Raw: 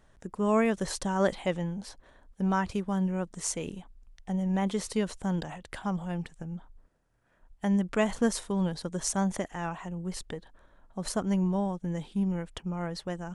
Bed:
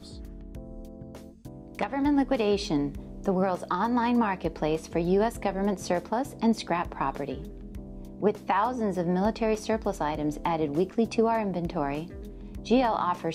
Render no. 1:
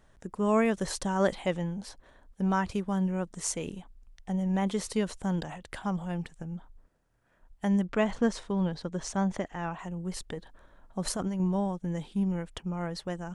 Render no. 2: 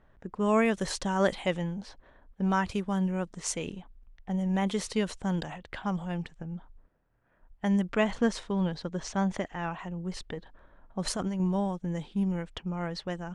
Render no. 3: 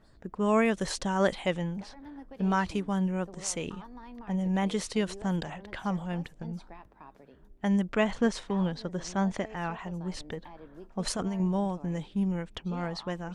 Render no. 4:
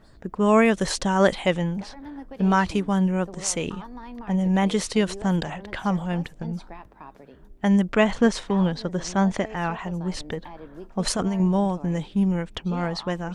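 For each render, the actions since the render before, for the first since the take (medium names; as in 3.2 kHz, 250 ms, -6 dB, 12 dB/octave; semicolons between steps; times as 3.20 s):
7.85–9.79 s: distance through air 100 m; 10.37–11.40 s: compressor with a negative ratio -30 dBFS
dynamic bell 2.8 kHz, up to +4 dB, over -47 dBFS, Q 0.77; level-controlled noise filter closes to 2.3 kHz, open at -25 dBFS
add bed -22 dB
trim +7 dB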